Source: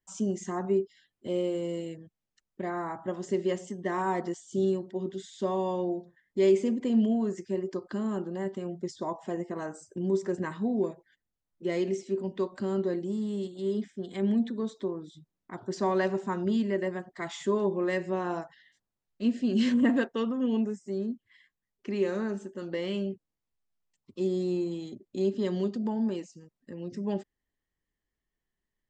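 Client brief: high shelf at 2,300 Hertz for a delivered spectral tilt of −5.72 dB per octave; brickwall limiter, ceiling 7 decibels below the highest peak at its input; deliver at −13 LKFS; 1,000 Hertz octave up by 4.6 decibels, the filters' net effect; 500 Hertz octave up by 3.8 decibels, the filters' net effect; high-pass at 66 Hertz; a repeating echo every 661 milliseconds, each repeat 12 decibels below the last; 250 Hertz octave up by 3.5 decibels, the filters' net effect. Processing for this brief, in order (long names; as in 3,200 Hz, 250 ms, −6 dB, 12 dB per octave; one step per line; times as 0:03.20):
high-pass filter 66 Hz
parametric band 250 Hz +3.5 dB
parametric band 500 Hz +3 dB
parametric band 1,000 Hz +5.5 dB
high-shelf EQ 2,300 Hz −6.5 dB
brickwall limiter −17.5 dBFS
repeating echo 661 ms, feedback 25%, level −12 dB
level +15.5 dB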